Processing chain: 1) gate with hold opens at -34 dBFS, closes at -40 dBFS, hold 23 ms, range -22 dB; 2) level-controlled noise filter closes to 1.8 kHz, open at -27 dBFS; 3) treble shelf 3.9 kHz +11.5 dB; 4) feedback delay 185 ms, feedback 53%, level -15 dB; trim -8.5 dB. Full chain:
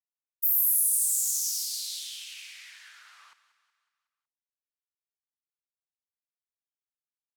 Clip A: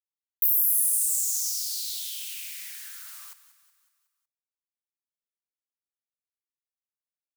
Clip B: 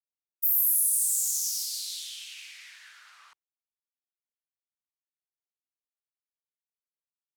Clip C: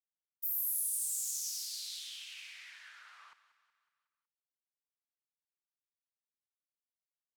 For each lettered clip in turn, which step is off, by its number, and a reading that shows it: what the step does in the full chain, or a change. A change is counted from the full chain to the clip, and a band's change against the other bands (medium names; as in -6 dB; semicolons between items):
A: 2, momentary loudness spread change +1 LU; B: 4, echo-to-direct -13.5 dB to none; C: 3, 8 kHz band -7.0 dB